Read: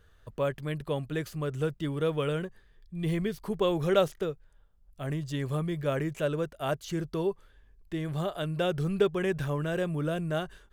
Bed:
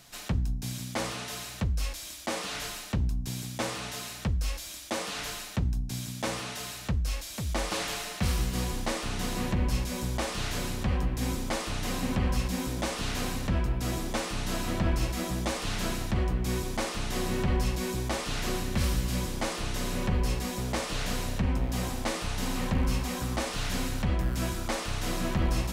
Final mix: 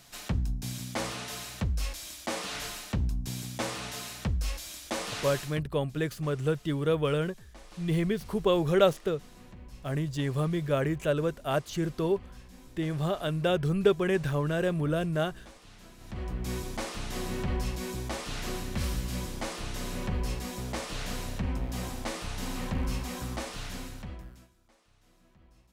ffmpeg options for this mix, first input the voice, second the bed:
ffmpeg -i stem1.wav -i stem2.wav -filter_complex "[0:a]adelay=4850,volume=2dB[link_01];[1:a]volume=16dB,afade=type=out:start_time=5.39:duration=0.25:silence=0.1,afade=type=in:start_time=15.97:duration=0.48:silence=0.141254,afade=type=out:start_time=23.27:duration=1.21:silence=0.0334965[link_02];[link_01][link_02]amix=inputs=2:normalize=0" out.wav

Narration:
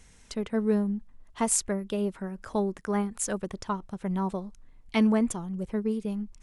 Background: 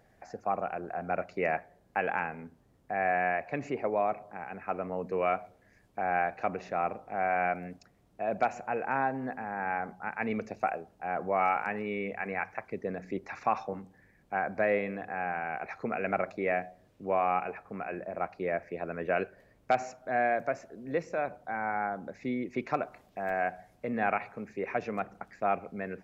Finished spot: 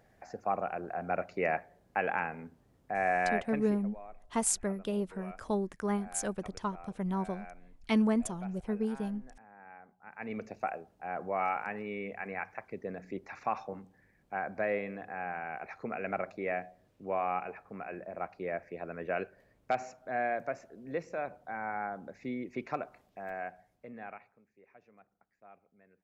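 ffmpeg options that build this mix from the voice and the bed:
ffmpeg -i stem1.wav -i stem2.wav -filter_complex "[0:a]adelay=2950,volume=-4dB[link_01];[1:a]volume=14.5dB,afade=type=out:start_time=3.35:duration=0.49:silence=0.112202,afade=type=in:start_time=10.01:duration=0.41:silence=0.16788,afade=type=out:start_time=22.63:duration=1.8:silence=0.0707946[link_02];[link_01][link_02]amix=inputs=2:normalize=0" out.wav

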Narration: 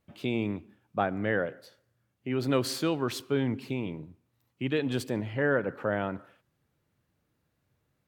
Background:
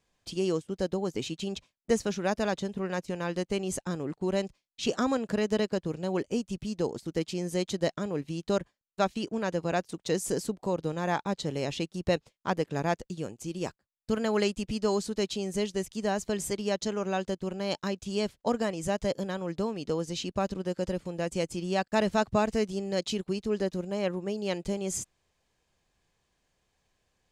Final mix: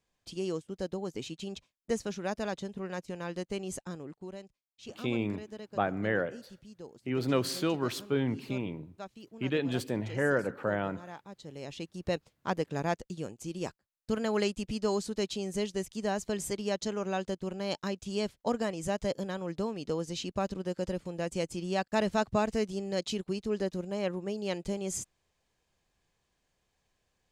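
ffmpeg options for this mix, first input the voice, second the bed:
ffmpeg -i stem1.wav -i stem2.wav -filter_complex "[0:a]adelay=4800,volume=-1.5dB[link_01];[1:a]volume=9dB,afade=type=out:start_time=3.73:duration=0.66:silence=0.266073,afade=type=in:start_time=11.35:duration=1.09:silence=0.188365[link_02];[link_01][link_02]amix=inputs=2:normalize=0" out.wav

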